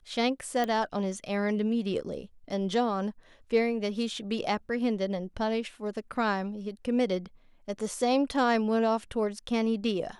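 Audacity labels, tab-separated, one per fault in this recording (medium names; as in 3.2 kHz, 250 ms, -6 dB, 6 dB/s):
0.640000	0.640000	pop -17 dBFS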